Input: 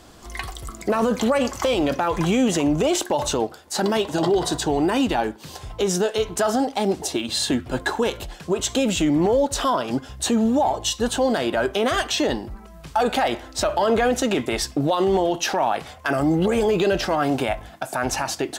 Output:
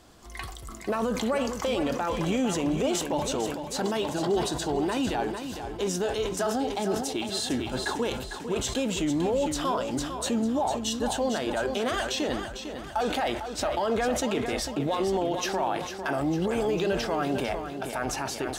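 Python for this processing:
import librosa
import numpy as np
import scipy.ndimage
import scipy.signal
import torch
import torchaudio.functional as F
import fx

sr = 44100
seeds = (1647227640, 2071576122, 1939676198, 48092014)

p1 = x + fx.echo_feedback(x, sr, ms=451, feedback_pct=50, wet_db=-9.0, dry=0)
p2 = fx.sustainer(p1, sr, db_per_s=55.0)
y = p2 * 10.0 ** (-7.5 / 20.0)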